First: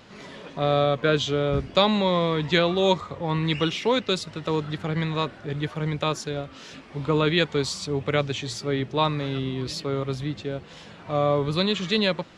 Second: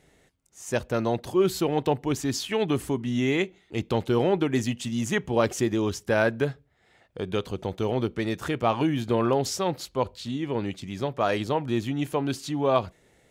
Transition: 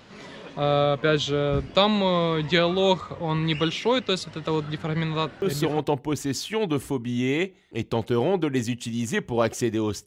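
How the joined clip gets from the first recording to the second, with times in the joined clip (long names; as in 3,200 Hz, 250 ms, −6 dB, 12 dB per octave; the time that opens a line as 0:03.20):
first
0:05.61: continue with second from 0:01.60, crossfade 0.38 s logarithmic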